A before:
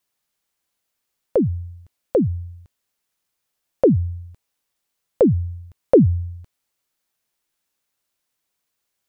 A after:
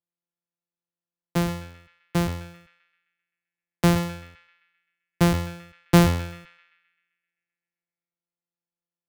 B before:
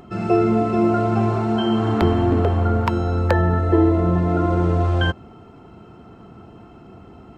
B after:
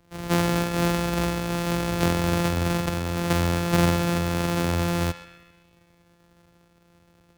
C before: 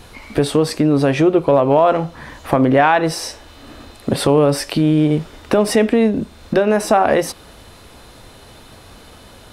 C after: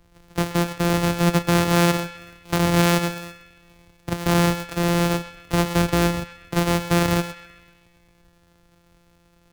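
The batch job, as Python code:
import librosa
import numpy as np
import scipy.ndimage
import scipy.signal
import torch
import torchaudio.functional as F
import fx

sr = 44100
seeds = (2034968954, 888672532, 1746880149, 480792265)

y = np.r_[np.sort(x[:len(x) // 256 * 256].reshape(-1, 256), axis=1).ravel(), x[len(x) // 256 * 256:]]
y = fx.echo_banded(y, sr, ms=130, feedback_pct=72, hz=2100.0, wet_db=-10)
y = fx.band_widen(y, sr, depth_pct=40)
y = y * 10.0 ** (-6.0 / 20.0)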